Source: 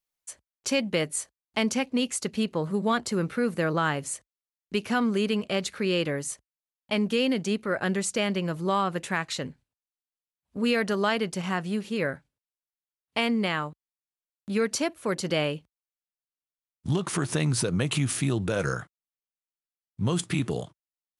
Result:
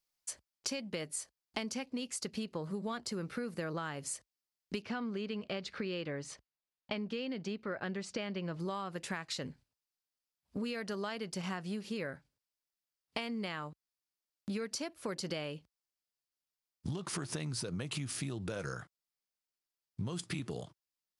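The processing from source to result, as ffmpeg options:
ffmpeg -i in.wav -filter_complex "[0:a]asettb=1/sr,asplit=3[link_01][link_02][link_03];[link_01]atrim=end=4.824[link_04];[link_02]atrim=start=4.82:end=8.6,asetpts=PTS-STARTPTS,afade=type=in:duration=0.004:curve=qsin,afade=type=out:start_time=3.776:duration=0.004:curve=qsin,lowpass=4000[link_05];[link_03]atrim=start=8.596[link_06];[link_04][link_05]acrossfade=duration=0.004:curve1=hsin:curve2=qsin[link_07];[link_07][link_06]acrossfade=duration=0.004:curve1=qsin:curve2=hsin,equalizer=frequency=4900:width=3.2:gain=7,acompressor=threshold=-35dB:ratio=12" out.wav

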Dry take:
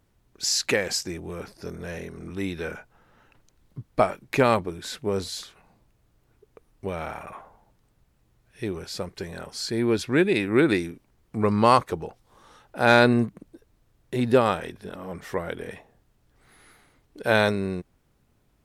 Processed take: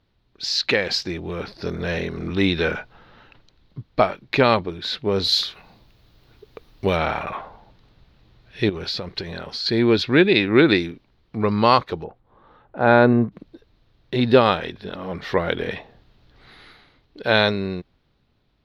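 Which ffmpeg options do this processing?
ffmpeg -i in.wav -filter_complex "[0:a]asettb=1/sr,asplit=3[link_01][link_02][link_03];[link_01]atrim=end=5.244[link_04];[link_02]atrim=start=5.24:end=6.97,asetpts=PTS-STARTPTS,afade=type=in:duration=0.004:curve=qsin,afade=type=out:start_time=1.726:duration=0.004:curve=qsin,aemphasis=mode=production:type=50kf[link_05];[link_03]atrim=start=6.966[link_06];[link_04][link_05]acrossfade=duration=0.004:curve1=hsin:curve2=qsin[link_07];[link_07][link_06]acrossfade=duration=0.004:curve1=qsin:curve2=hsin,asettb=1/sr,asplit=3[link_08][link_09][link_10];[link_08]atrim=end=8.694[link_11];[link_09]atrim=start=8.69:end=9.66,asetpts=PTS-STARTPTS,afade=type=in:duration=0.004:curve=qsin,afade=type=out:start_time=0.966:duration=0.004:curve=qsin,acompressor=threshold=-36dB:ratio=6:attack=3.2:release=140:knee=1:detection=peak[link_12];[link_10]atrim=start=9.656[link_13];[link_11][link_12]acrossfade=duration=0.004:curve1=hsin:curve2=qsin[link_14];[link_14][link_13]acrossfade=duration=0.004:curve1=qsin:curve2=hsin,asplit=3[link_15][link_16][link_17];[link_15]afade=type=out:start_time=12.03:duration=0.02[link_18];[link_16]lowpass=1300,afade=type=in:start_time=12.03:duration=0.02,afade=type=out:start_time=13.31:duration=0.02[link_19];[link_17]afade=type=in:start_time=13.31:duration=0.02[link_20];[link_18][link_19][link_20]amix=inputs=3:normalize=0,highshelf=frequency=5900:width_type=q:width=3:gain=-14,dynaudnorm=framelen=140:gausssize=11:maxgain=11.5dB,volume=-1dB" out.wav

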